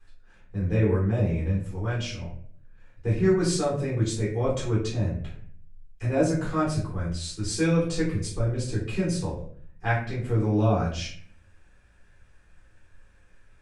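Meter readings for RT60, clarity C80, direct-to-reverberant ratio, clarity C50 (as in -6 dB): 0.55 s, 9.0 dB, -8.0 dB, 4.5 dB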